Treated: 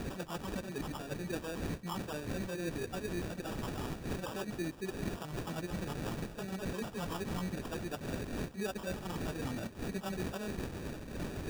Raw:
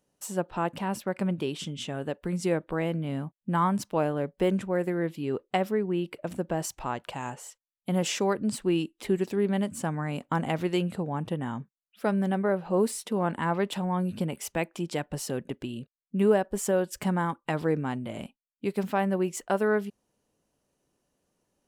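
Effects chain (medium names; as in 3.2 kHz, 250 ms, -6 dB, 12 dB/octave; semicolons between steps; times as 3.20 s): knee-point frequency compression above 2.8 kHz 1.5:1; wind noise 330 Hz -29 dBFS; reverse; compression 8:1, threshold -40 dBFS, peak gain reduction 25 dB; reverse; vibrato 6.2 Hz 11 cents; plain phase-vocoder stretch 0.53×; on a send: feedback echo behind a high-pass 604 ms, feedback 55%, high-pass 2.4 kHz, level -8 dB; on the sum: sample-and-hold 21×; trim +7.5 dB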